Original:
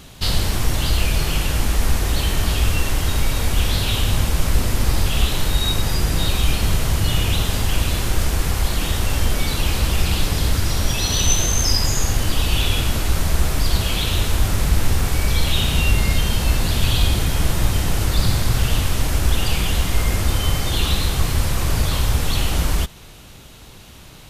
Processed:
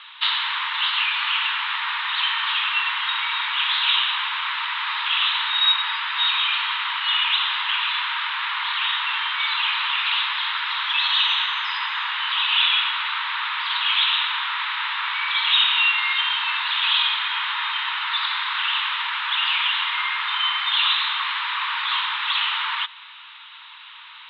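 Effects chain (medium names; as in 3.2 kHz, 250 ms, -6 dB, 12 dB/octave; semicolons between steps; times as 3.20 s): Chebyshev band-pass 920–3800 Hz, order 5; trim +7.5 dB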